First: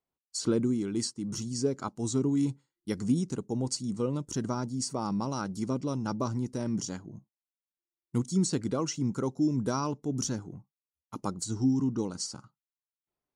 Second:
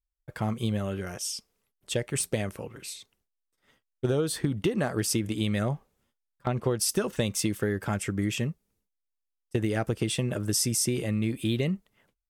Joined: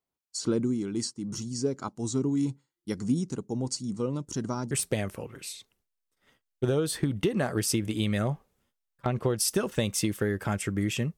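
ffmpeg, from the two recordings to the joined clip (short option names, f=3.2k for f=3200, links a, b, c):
-filter_complex "[0:a]apad=whole_dur=11.17,atrim=end=11.17,atrim=end=4.712[a];[1:a]atrim=start=2.118:end=8.58[b];[a][b]acrossfade=d=0.004:c1=hsin:c2=hsin"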